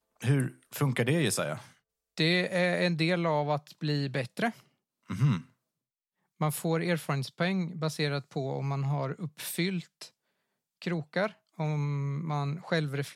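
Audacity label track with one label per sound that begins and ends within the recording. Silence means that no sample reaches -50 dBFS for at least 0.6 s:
6.410000	10.080000	sound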